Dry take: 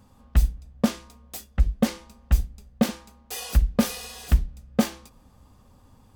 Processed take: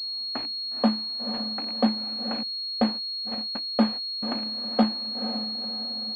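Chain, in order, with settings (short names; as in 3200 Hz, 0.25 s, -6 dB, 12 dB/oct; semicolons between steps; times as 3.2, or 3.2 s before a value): rattling part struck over -24 dBFS, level -25 dBFS; harmonic-percussive split percussive +8 dB; in parallel at -3.5 dB: sample gate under -20 dBFS; on the sum: rippled Chebyshev high-pass 210 Hz, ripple 9 dB; on a send: diffused feedback echo 0.489 s, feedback 48%, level -8.5 dB; 2.43–4.23 on the sum: gate -27 dBFS, range -50 dB; pulse-width modulation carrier 4300 Hz; gain -5 dB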